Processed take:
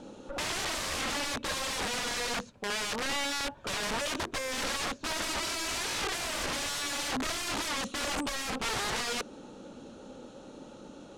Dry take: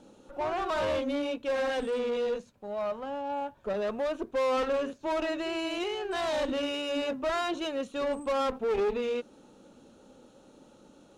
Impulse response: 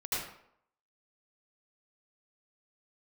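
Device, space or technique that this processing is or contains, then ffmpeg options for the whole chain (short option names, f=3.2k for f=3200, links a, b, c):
overflowing digital effects unit: -af "aeval=exprs='(mod(56.2*val(0)+1,2)-1)/56.2':c=same,lowpass=8k,volume=8dB"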